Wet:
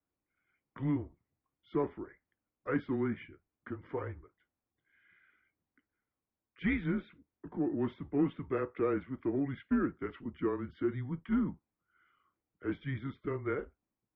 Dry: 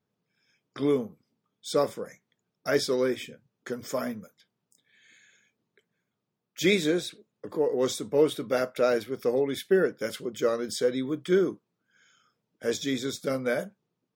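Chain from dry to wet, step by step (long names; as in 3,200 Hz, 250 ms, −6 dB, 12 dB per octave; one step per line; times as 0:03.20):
soft clipping −11.5 dBFS, distortion −25 dB
single-sideband voice off tune −140 Hz 230–2,600 Hz
level −6.5 dB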